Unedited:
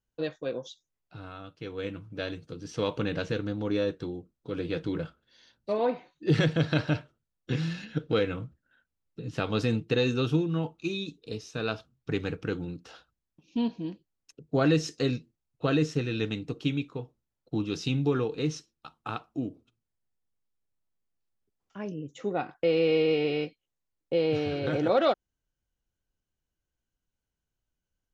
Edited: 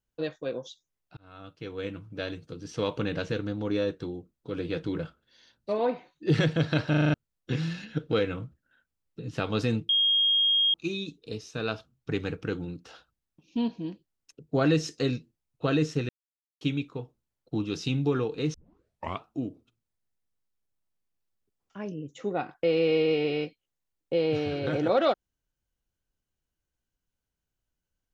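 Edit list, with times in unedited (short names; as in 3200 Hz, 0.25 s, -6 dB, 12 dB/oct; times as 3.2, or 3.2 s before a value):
1.17–1.48 fade in linear
6.9 stutter in place 0.04 s, 6 plays
9.89–10.74 bleep 3250 Hz -20 dBFS
16.09–16.61 mute
18.54 tape start 0.70 s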